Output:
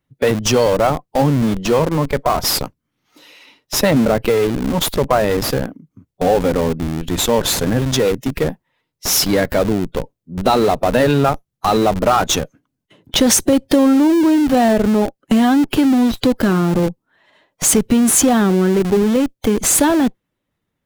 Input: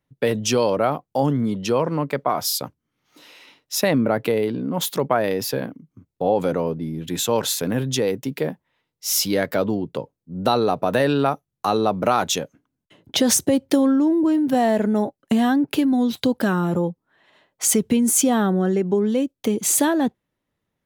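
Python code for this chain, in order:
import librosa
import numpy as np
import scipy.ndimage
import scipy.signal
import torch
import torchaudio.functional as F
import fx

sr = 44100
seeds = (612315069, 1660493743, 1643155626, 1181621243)

p1 = fx.spec_quant(x, sr, step_db=15)
p2 = fx.schmitt(p1, sr, flips_db=-23.5)
p3 = p1 + (p2 * librosa.db_to_amplitude(-5.5))
y = p3 * librosa.db_to_amplitude(3.5)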